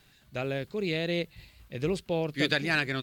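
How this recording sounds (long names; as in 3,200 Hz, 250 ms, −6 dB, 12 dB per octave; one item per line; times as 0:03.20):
background noise floor −62 dBFS
spectral slope −3.5 dB per octave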